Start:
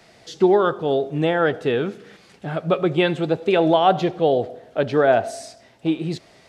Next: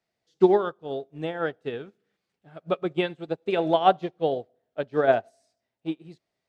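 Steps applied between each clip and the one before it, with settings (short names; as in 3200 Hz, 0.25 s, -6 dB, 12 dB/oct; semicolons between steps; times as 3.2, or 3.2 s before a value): upward expander 2.5:1, over -32 dBFS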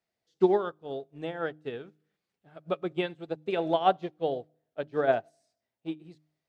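de-hum 153.3 Hz, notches 2; gain -4.5 dB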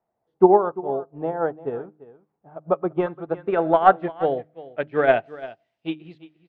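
tracing distortion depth 0.031 ms; echo 0.344 s -17.5 dB; low-pass sweep 910 Hz -> 2900 Hz, 2.57–5.55; gain +6.5 dB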